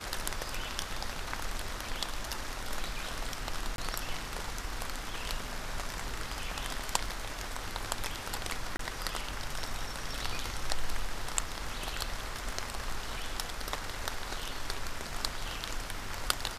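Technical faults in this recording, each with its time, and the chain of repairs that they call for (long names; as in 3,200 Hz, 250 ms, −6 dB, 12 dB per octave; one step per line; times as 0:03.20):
0:03.76–0:03.78: drop-out 22 ms
0:08.77–0:08.79: drop-out 23 ms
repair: repair the gap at 0:03.76, 22 ms
repair the gap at 0:08.77, 23 ms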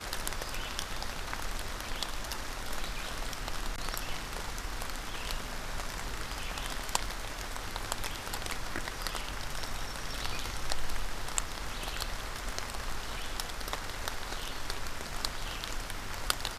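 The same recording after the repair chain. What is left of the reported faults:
none of them is left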